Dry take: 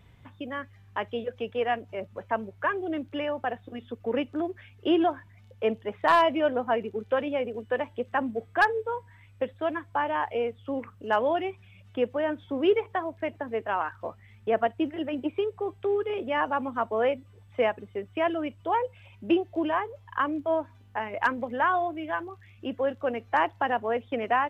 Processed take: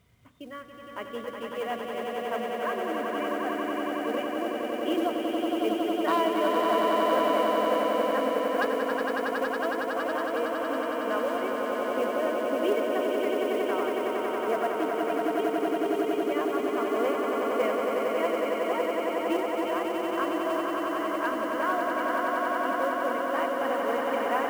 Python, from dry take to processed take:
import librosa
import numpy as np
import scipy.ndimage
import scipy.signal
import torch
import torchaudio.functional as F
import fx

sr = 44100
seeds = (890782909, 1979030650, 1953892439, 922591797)

y = fx.hum_notches(x, sr, base_hz=50, count=8)
y = fx.notch_comb(y, sr, f0_hz=870.0)
y = fx.quant_companded(y, sr, bits=6)
y = fx.echo_swell(y, sr, ms=92, loudest=8, wet_db=-5)
y = F.gain(torch.from_numpy(y), -5.0).numpy()